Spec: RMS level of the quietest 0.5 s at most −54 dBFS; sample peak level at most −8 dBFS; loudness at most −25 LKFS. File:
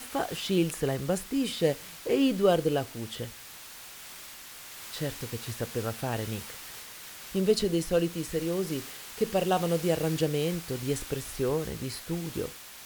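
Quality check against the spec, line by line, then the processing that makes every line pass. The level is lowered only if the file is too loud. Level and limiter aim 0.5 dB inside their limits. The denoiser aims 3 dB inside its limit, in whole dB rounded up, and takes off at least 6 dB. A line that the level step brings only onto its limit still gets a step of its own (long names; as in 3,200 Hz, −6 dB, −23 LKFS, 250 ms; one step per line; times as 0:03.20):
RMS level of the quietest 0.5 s −46 dBFS: out of spec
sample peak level −10.5 dBFS: in spec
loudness −30.0 LKFS: in spec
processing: broadband denoise 11 dB, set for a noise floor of −46 dBFS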